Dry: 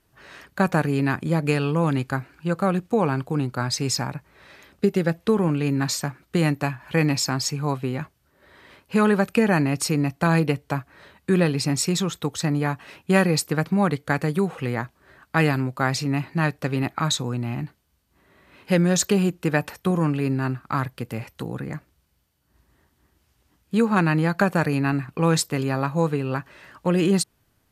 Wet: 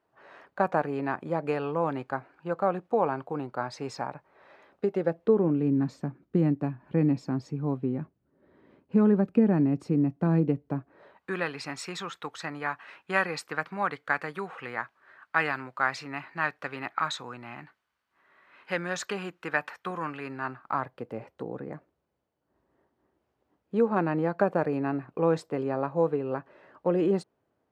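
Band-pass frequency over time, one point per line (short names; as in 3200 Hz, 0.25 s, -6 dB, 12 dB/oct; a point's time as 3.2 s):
band-pass, Q 1.2
4.88 s 720 Hz
5.71 s 260 Hz
10.74 s 260 Hz
11.37 s 1400 Hz
20.25 s 1400 Hz
21.13 s 520 Hz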